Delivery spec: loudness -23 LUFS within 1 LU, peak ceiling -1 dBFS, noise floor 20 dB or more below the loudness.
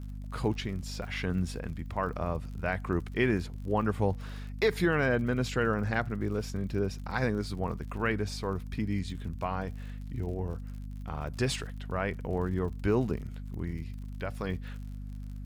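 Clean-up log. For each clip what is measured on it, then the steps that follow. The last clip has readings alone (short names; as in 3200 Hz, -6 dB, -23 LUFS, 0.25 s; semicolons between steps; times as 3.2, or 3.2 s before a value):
ticks 58/s; hum 50 Hz; harmonics up to 250 Hz; hum level -37 dBFS; loudness -32.5 LUFS; peak -15.5 dBFS; loudness target -23.0 LUFS
-> de-click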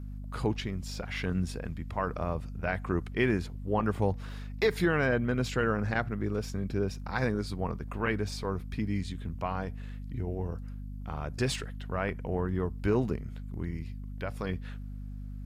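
ticks 0.19/s; hum 50 Hz; harmonics up to 250 Hz; hum level -37 dBFS
-> de-hum 50 Hz, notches 5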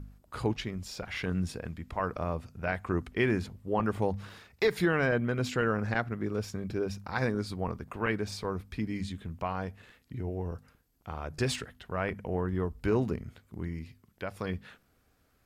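hum none; loudness -33.0 LUFS; peak -16.0 dBFS; loudness target -23.0 LUFS
-> gain +10 dB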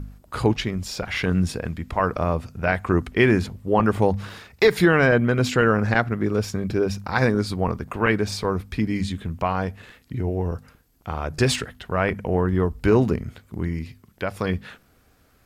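loudness -23.0 LUFS; peak -6.0 dBFS; noise floor -59 dBFS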